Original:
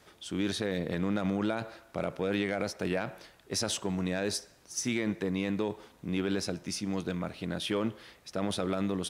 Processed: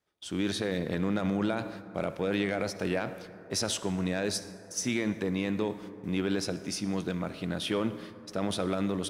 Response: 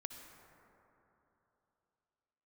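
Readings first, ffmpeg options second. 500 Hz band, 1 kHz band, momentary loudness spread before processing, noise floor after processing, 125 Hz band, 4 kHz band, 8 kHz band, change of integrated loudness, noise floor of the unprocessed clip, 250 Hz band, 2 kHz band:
+1.0 dB, +1.0 dB, 6 LU, -49 dBFS, +1.5 dB, +1.0 dB, +1.0 dB, +1.0 dB, -60 dBFS, +1.5 dB, +1.0 dB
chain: -filter_complex "[0:a]agate=range=-25dB:threshold=-49dB:ratio=16:detection=peak,asplit=2[a][b];[1:a]atrim=start_sample=2205[c];[b][c]afir=irnorm=-1:irlink=0,volume=-0.5dB[d];[a][d]amix=inputs=2:normalize=0,volume=-3dB"

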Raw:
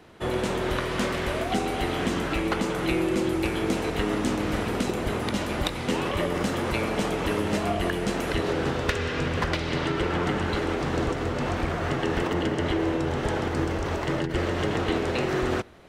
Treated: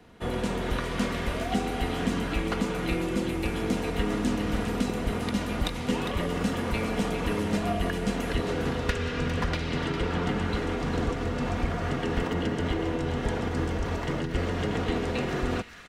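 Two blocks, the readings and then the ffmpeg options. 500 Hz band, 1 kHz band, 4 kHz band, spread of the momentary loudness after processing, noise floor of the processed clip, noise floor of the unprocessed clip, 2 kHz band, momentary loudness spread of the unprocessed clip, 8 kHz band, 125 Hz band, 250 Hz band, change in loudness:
-3.5 dB, -3.5 dB, -3.0 dB, 2 LU, -32 dBFS, -31 dBFS, -3.5 dB, 2 LU, -3.5 dB, -0.5 dB, -1.5 dB, -2.5 dB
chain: -filter_complex "[0:a]aecho=1:1:4.2:0.4,acrossover=split=210|1200[a][b][c];[a]acontrast=59[d];[c]aecho=1:1:404:0.398[e];[d][b][e]amix=inputs=3:normalize=0,volume=-4.5dB"

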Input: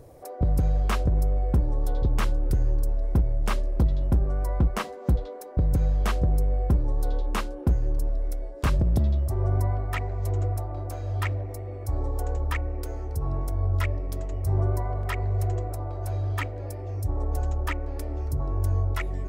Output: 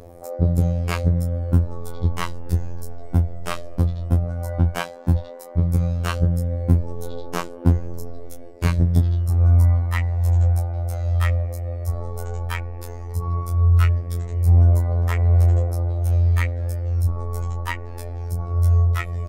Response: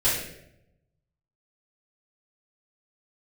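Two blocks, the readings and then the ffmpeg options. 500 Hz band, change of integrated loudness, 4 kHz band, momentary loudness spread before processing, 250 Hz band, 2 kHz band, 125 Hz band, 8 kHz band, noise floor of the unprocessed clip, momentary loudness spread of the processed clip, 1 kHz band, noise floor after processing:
+2.0 dB, +6.0 dB, +4.0 dB, 8 LU, +5.0 dB, +4.0 dB, +7.5 dB, +4.0 dB, -38 dBFS, 13 LU, +2.0 dB, -35 dBFS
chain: -filter_complex "[0:a]asplit=2[a][b];[b]adelay=20,volume=-6dB[c];[a][c]amix=inputs=2:normalize=0,aphaser=in_gain=1:out_gain=1:delay=1.7:decay=0.36:speed=0.13:type=triangular,afftfilt=real='hypot(re,im)*cos(PI*b)':imag='0':win_size=2048:overlap=0.75,volume=5.5dB"

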